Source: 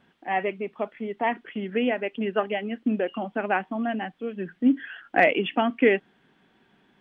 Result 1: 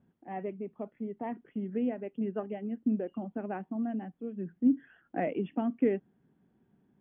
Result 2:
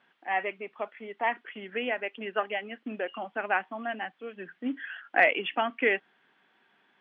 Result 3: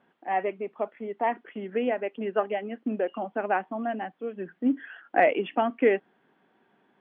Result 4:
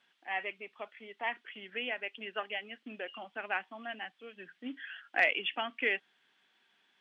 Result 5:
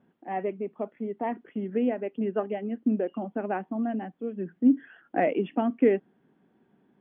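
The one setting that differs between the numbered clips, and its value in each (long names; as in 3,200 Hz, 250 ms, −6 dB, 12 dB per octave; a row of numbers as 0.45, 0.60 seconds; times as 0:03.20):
resonant band-pass, frequency: 100, 1,700, 670, 5,000, 260 Hertz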